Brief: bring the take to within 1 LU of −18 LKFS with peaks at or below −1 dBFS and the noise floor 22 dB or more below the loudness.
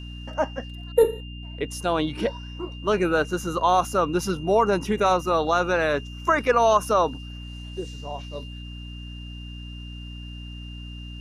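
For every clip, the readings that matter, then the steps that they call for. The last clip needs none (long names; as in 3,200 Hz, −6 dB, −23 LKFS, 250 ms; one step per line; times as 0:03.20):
mains hum 60 Hz; hum harmonics up to 300 Hz; level of the hum −35 dBFS; interfering tone 2,800 Hz; level of the tone −43 dBFS; integrated loudness −23.5 LKFS; sample peak −7.5 dBFS; target loudness −18.0 LKFS
→ hum removal 60 Hz, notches 5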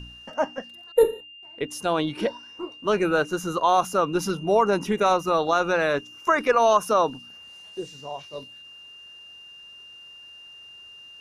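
mains hum none found; interfering tone 2,800 Hz; level of the tone −43 dBFS
→ notch filter 2,800 Hz, Q 30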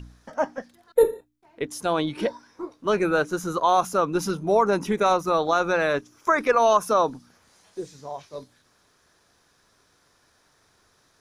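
interfering tone none found; integrated loudness −23.5 LKFS; sample peak −7.0 dBFS; target loudness −18.0 LKFS
→ level +5.5 dB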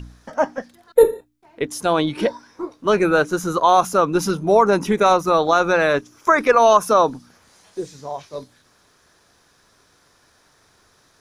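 integrated loudness −18.0 LKFS; sample peak −1.5 dBFS; background noise floor −58 dBFS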